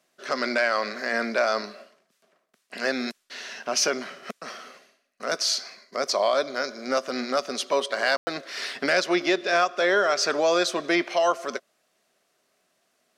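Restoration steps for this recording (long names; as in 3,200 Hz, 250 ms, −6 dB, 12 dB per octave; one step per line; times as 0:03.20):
ambience match 0:08.17–0:08.27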